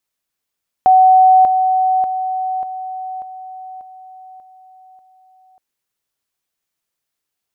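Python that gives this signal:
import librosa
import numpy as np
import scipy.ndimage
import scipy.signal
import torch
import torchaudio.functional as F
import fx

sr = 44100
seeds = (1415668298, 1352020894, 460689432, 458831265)

y = fx.level_ladder(sr, hz=750.0, from_db=-5.5, step_db=-6.0, steps=8, dwell_s=0.59, gap_s=0.0)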